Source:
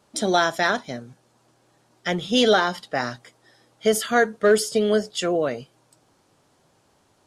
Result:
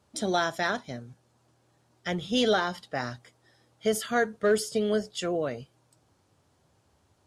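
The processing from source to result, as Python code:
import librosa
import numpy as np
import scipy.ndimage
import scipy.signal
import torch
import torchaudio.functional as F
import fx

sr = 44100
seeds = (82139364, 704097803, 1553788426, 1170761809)

y = fx.peak_eq(x, sr, hz=78.0, db=12.0, octaves=1.3)
y = y * librosa.db_to_amplitude(-7.0)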